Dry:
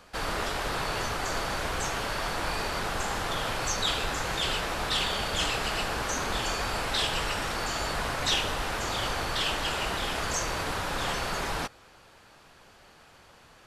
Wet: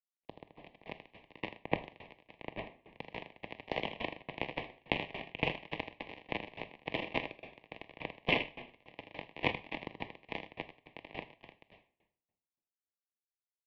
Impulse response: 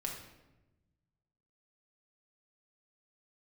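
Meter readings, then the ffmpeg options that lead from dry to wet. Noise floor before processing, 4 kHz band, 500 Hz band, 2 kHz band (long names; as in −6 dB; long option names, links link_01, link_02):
−56 dBFS, −15.0 dB, −8.0 dB, −9.5 dB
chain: -filter_complex "[0:a]acrusher=bits=2:mix=0:aa=0.5,acompressor=threshold=-46dB:ratio=5,afreqshift=-170,asuperstop=centerf=1800:order=4:qfactor=1.5,bandreject=frequency=50:width_type=h:width=6,bandreject=frequency=100:width_type=h:width=6,bandreject=frequency=150:width_type=h:width=6,bandreject=frequency=200:width_type=h:width=6,bandreject=frequency=250:width_type=h:width=6,bandreject=frequency=300:width_type=h:width=6,bandreject=frequency=350:width_type=h:width=6,bandreject=frequency=400:width_type=h:width=6,bandreject=frequency=450:width_type=h:width=6,bandreject=frequency=500:width_type=h:width=6,aecho=1:1:80:0.708,asplit=2[link_01][link_02];[1:a]atrim=start_sample=2205,asetrate=36162,aresample=44100,highshelf=frequency=3900:gain=10[link_03];[link_02][link_03]afir=irnorm=-1:irlink=0,volume=-5.5dB[link_04];[link_01][link_04]amix=inputs=2:normalize=0,dynaudnorm=framelen=510:gausssize=3:maxgain=13.5dB,highpass=frequency=510:width_type=q:width=0.5412,highpass=frequency=510:width_type=q:width=1.307,lowpass=frequency=2900:width_type=q:width=0.5176,lowpass=frequency=2900:width_type=q:width=0.7071,lowpass=frequency=2900:width_type=q:width=1.932,afreqshift=-390,aeval=exprs='val(0)*pow(10,-23*if(lt(mod(3.5*n/s,1),2*abs(3.5)/1000),1-mod(3.5*n/s,1)/(2*abs(3.5)/1000),(mod(3.5*n/s,1)-2*abs(3.5)/1000)/(1-2*abs(3.5)/1000))/20)':channel_layout=same,volume=14.5dB"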